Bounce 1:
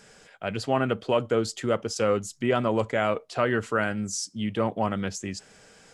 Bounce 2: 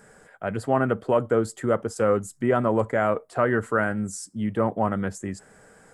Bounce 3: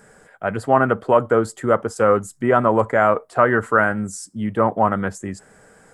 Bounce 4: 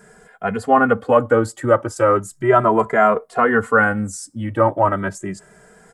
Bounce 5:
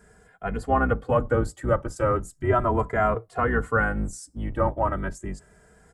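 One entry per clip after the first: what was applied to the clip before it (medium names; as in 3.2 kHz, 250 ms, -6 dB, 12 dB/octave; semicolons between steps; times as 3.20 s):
high-order bell 3.9 kHz -13.5 dB; trim +2.5 dB
dynamic bell 1.1 kHz, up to +7 dB, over -37 dBFS, Q 0.77; trim +2.5 dB
endless flanger 2.5 ms +0.35 Hz; trim +4.5 dB
octave divider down 2 oct, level +3 dB; trim -8.5 dB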